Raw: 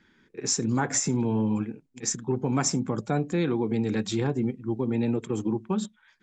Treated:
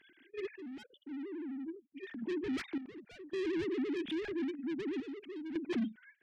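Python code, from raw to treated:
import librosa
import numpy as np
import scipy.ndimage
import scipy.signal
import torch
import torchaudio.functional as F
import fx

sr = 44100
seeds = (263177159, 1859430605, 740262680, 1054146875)

p1 = fx.sine_speech(x, sr)
p2 = fx.spec_erase(p1, sr, start_s=0.83, length_s=0.99, low_hz=600.0, high_hz=2900.0)
p3 = fx.level_steps(p2, sr, step_db=17)
p4 = p2 + F.gain(torch.from_numpy(p3), 1.0).numpy()
p5 = 10.0 ** (-31.0 / 20.0) * np.tanh(p4 / 10.0 ** (-31.0 / 20.0))
p6 = fx.band_shelf(p5, sr, hz=800.0, db=-15.5, octaves=1.7)
p7 = fx.tremolo_random(p6, sr, seeds[0], hz=1.8, depth_pct=80)
y = F.gain(torch.from_numpy(p7), 1.0).numpy()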